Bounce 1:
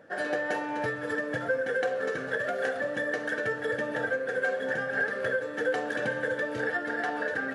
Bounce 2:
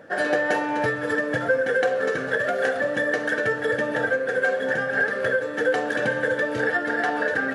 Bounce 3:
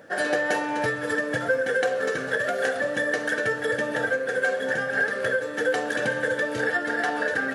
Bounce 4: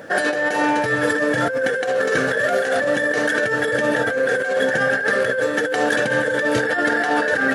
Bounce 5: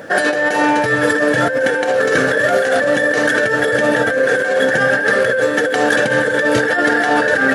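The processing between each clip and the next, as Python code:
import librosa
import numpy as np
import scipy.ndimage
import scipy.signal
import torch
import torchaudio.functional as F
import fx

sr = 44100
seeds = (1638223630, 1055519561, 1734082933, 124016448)

y1 = fx.rider(x, sr, range_db=10, speed_s=2.0)
y1 = y1 * 10.0 ** (6.5 / 20.0)
y2 = fx.high_shelf(y1, sr, hz=4300.0, db=9.5)
y2 = y2 * 10.0 ** (-2.5 / 20.0)
y3 = fx.over_compress(y2, sr, threshold_db=-28.0, ratio=-1.0)
y3 = y3 * 10.0 ** (8.5 / 20.0)
y4 = y3 + 10.0 ** (-12.5 / 20.0) * np.pad(y3, (int(1100 * sr / 1000.0), 0))[:len(y3)]
y4 = y4 * 10.0 ** (4.5 / 20.0)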